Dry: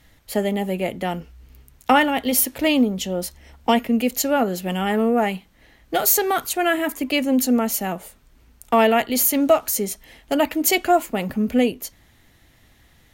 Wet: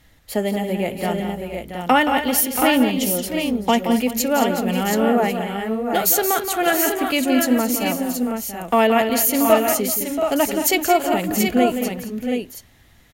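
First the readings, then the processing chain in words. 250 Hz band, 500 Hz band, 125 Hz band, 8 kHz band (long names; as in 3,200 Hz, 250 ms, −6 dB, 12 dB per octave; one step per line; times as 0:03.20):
+2.0 dB, +2.0 dB, +2.0 dB, +2.0 dB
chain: multi-tap delay 174/219/384/680/725 ms −9/−11.5/−18.5/−10/−6 dB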